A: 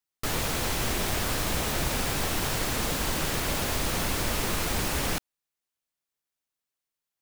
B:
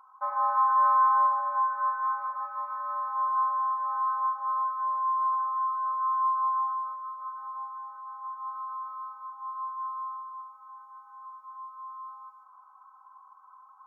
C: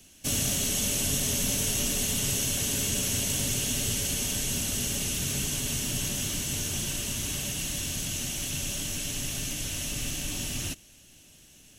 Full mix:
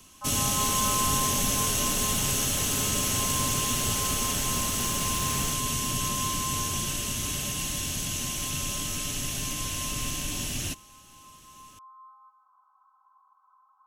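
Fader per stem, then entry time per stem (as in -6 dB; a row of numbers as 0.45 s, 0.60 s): -9.5 dB, -9.0 dB, +1.0 dB; 0.35 s, 0.00 s, 0.00 s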